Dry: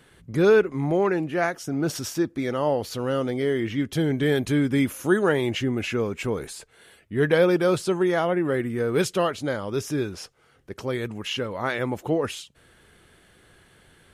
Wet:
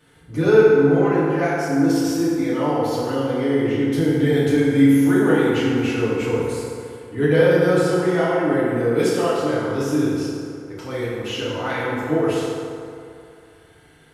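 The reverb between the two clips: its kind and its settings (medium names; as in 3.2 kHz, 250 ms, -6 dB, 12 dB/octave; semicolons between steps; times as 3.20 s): FDN reverb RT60 2.5 s, low-frequency decay 0.85×, high-frequency decay 0.5×, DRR -10 dB; trim -7 dB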